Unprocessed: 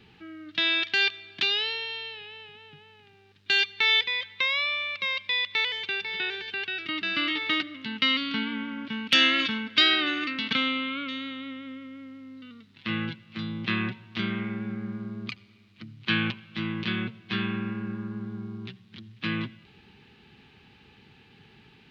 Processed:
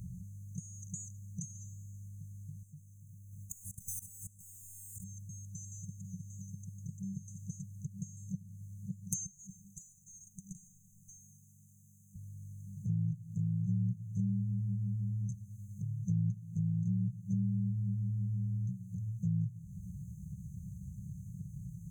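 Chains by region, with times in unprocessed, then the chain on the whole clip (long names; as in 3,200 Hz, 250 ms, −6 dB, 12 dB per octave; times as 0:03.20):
0:02.63–0:05.04: mu-law and A-law mismatch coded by mu + output level in coarse steps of 21 dB
0:09.26–0:12.16: high-pass filter 270 Hz + downward compressor 8 to 1, threshold −32 dBFS + floating-point word with a short mantissa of 8 bits
whole clip: brick-wall band-stop 200–6,100 Hz; parametric band 260 Hz −15 dB 0.37 octaves; downward compressor 2 to 1, threshold −59 dBFS; level +18 dB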